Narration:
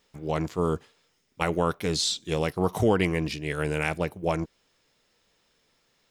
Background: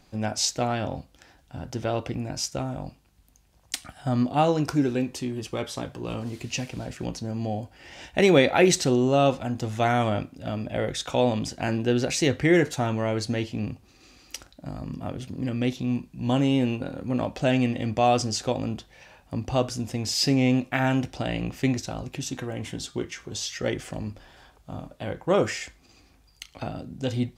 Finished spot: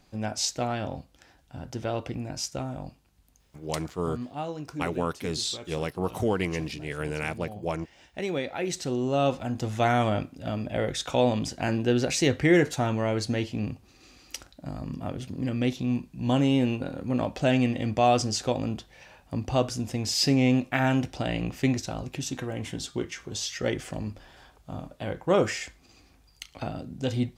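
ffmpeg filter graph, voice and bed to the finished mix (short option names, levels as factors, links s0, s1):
-filter_complex "[0:a]adelay=3400,volume=0.631[s0];[1:a]volume=2.82,afade=t=out:st=3.61:d=0.3:silence=0.334965,afade=t=in:st=8.63:d=1.03:silence=0.251189[s1];[s0][s1]amix=inputs=2:normalize=0"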